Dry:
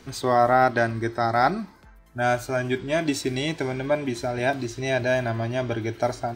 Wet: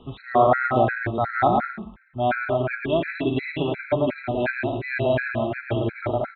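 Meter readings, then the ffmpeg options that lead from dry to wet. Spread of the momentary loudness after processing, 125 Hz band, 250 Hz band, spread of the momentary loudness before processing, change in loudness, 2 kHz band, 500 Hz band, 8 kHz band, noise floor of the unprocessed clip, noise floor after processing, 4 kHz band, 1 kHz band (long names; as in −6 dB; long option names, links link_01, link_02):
7 LU, +0.5 dB, +1.0 dB, 9 LU, +0.5 dB, +1.0 dB, +1.0 dB, below −40 dB, −50 dBFS, −47 dBFS, −4.0 dB, +0.5 dB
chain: -af "aresample=8000,aresample=44100,aecho=1:1:110|187|240.9|278.6|305:0.631|0.398|0.251|0.158|0.1,afftfilt=real='re*gt(sin(2*PI*2.8*pts/sr)*(1-2*mod(floor(b*sr/1024/1300),2)),0)':imag='im*gt(sin(2*PI*2.8*pts/sr)*(1-2*mod(floor(b*sr/1024/1300),2)),0)':win_size=1024:overlap=0.75,volume=2dB"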